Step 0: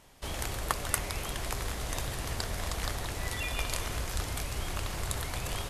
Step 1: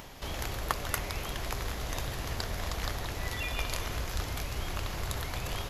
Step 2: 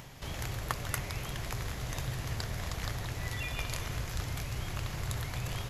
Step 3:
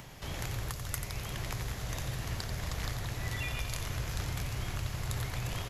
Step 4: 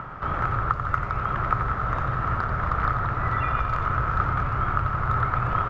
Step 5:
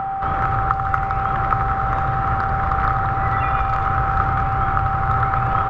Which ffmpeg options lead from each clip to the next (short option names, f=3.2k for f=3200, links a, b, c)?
-af "equalizer=f=8.8k:t=o:w=0.29:g=-14.5,acompressor=mode=upward:threshold=-37dB:ratio=2.5"
-af "equalizer=f=125:t=o:w=1:g=11,equalizer=f=2k:t=o:w=1:g=3,equalizer=f=8k:t=o:w=1:g=4,volume=-5dB"
-filter_complex "[0:a]acrossover=split=130|3900[a][b][c];[b]alimiter=level_in=3dB:limit=-24dB:level=0:latency=1:release=480,volume=-3dB[d];[a][d][c]amix=inputs=3:normalize=0,aecho=1:1:89:0.398"
-af "lowpass=f=1.3k:t=q:w=12,volume=8.5dB"
-af "aeval=exprs='val(0)+0.0501*sin(2*PI*780*n/s)':c=same,volume=4dB"